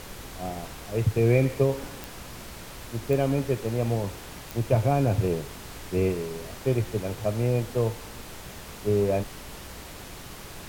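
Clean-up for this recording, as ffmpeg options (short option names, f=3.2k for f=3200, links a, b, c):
-af "adeclick=t=4,bandreject=f=60.8:t=h:w=4,bandreject=f=121.6:t=h:w=4,bandreject=f=182.4:t=h:w=4,afftdn=nr=29:nf=-42"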